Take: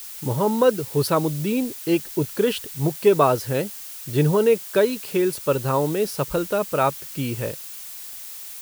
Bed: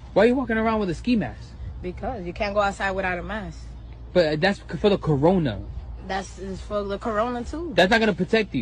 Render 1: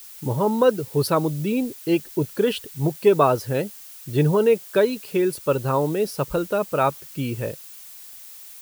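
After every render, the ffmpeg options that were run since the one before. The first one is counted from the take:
ffmpeg -i in.wav -af "afftdn=noise_reduction=6:noise_floor=-37" out.wav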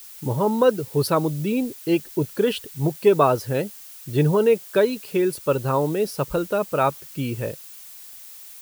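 ffmpeg -i in.wav -af anull out.wav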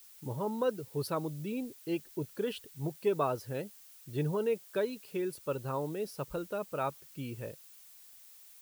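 ffmpeg -i in.wav -af "volume=-13.5dB" out.wav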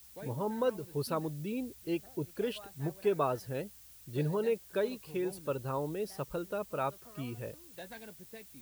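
ffmpeg -i in.wav -i bed.wav -filter_complex "[1:a]volume=-30dB[link_01];[0:a][link_01]amix=inputs=2:normalize=0" out.wav

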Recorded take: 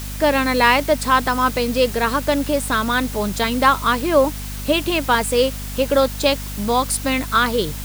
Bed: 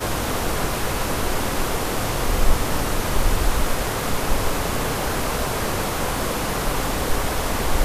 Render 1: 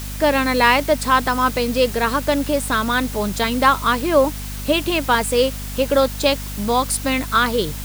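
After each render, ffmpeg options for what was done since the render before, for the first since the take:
ffmpeg -i in.wav -af anull out.wav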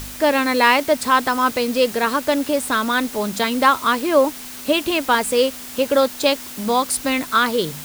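ffmpeg -i in.wav -af "bandreject=frequency=50:width_type=h:width=4,bandreject=frequency=100:width_type=h:width=4,bandreject=frequency=150:width_type=h:width=4,bandreject=frequency=200:width_type=h:width=4" out.wav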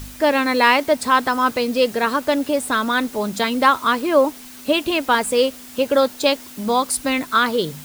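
ffmpeg -i in.wav -af "afftdn=noise_reduction=6:noise_floor=-35" out.wav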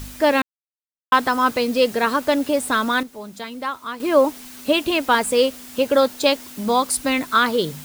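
ffmpeg -i in.wav -filter_complex "[0:a]asplit=5[link_01][link_02][link_03][link_04][link_05];[link_01]atrim=end=0.42,asetpts=PTS-STARTPTS,afade=type=out:start_time=0.416:duration=0.004:curve=hsin[link_06];[link_02]atrim=start=0.42:end=1.12,asetpts=PTS-STARTPTS,volume=0[link_07];[link_03]atrim=start=1.12:end=3.03,asetpts=PTS-STARTPTS,afade=type=in:duration=0.004:curve=hsin,afade=type=out:start_time=1.66:duration=0.25:curve=log:silence=0.251189[link_08];[link_04]atrim=start=3.03:end=4,asetpts=PTS-STARTPTS,volume=-12dB[link_09];[link_05]atrim=start=4,asetpts=PTS-STARTPTS,afade=type=in:duration=0.25:curve=log:silence=0.251189[link_10];[link_06][link_07][link_08][link_09][link_10]concat=n=5:v=0:a=1" out.wav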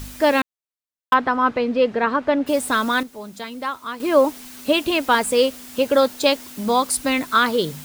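ffmpeg -i in.wav -filter_complex "[0:a]asplit=3[link_01][link_02][link_03];[link_01]afade=type=out:start_time=1.13:duration=0.02[link_04];[link_02]lowpass=2300,afade=type=in:start_time=1.13:duration=0.02,afade=type=out:start_time=2.46:duration=0.02[link_05];[link_03]afade=type=in:start_time=2.46:duration=0.02[link_06];[link_04][link_05][link_06]amix=inputs=3:normalize=0" out.wav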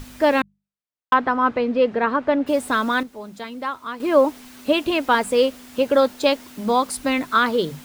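ffmpeg -i in.wav -af "highshelf=frequency=4200:gain=-8.5,bandreject=frequency=50:width_type=h:width=6,bandreject=frequency=100:width_type=h:width=6,bandreject=frequency=150:width_type=h:width=6,bandreject=frequency=200:width_type=h:width=6" out.wav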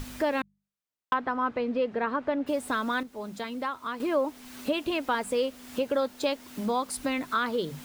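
ffmpeg -i in.wav -af "acompressor=threshold=-32dB:ratio=2" out.wav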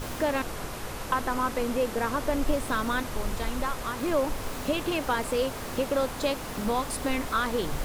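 ffmpeg -i in.wav -i bed.wav -filter_complex "[1:a]volume=-12.5dB[link_01];[0:a][link_01]amix=inputs=2:normalize=0" out.wav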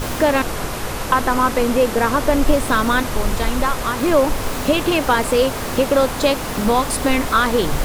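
ffmpeg -i in.wav -af "volume=11dB,alimiter=limit=-2dB:level=0:latency=1" out.wav

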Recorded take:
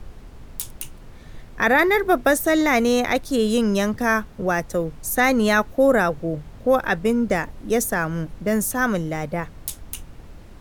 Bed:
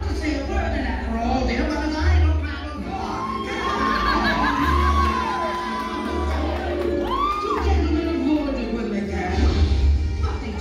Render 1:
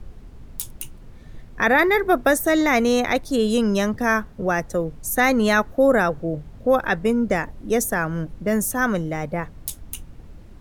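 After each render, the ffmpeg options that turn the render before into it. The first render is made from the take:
ffmpeg -i in.wav -af "afftdn=noise_reduction=6:noise_floor=-43" out.wav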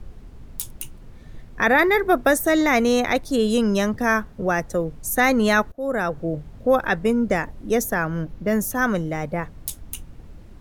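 ffmpeg -i in.wav -filter_complex "[0:a]asettb=1/sr,asplit=3[link_01][link_02][link_03];[link_01]atrim=end=7.754[link_04];[link_02]atrim=start=7.75:end=8.75,asetpts=PTS-STARTPTS,afade=type=in:duration=0.004:curve=qsin,afade=type=out:start_time=0.996:duration=0.004:curve=qsin,equalizer=frequency=8700:width=2.5:gain=-8.5[link_05];[link_03]atrim=start=8.746[link_06];[link_04][link_05]acrossfade=duration=0.004:curve1=hsin:curve2=qsin[link_07];[link_07][link_06]acrossfade=duration=0.004:curve1=qsin:curve2=hsin,asplit=2[link_08][link_09];[link_08]atrim=end=5.72,asetpts=PTS-STARTPTS,afade=type=out:start_time=5.716:duration=0.004:curve=hsin:silence=0.0707946[link_10];[link_09]atrim=start=5.72,asetpts=PTS-STARTPTS,afade=type=in:duration=0.52:silence=0.0707946[link_11];[link_10][link_11]concat=n=2:v=0:a=1" out.wav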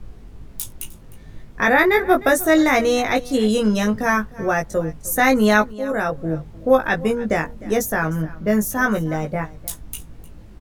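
ffmpeg -i in.wav -filter_complex "[0:a]asplit=2[link_01][link_02];[link_02]adelay=19,volume=-3.5dB[link_03];[link_01][link_03]amix=inputs=2:normalize=0,aecho=1:1:306:0.1" out.wav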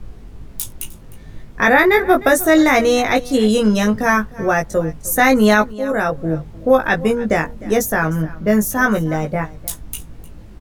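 ffmpeg -i in.wav -af "volume=3.5dB,alimiter=limit=-2dB:level=0:latency=1" out.wav

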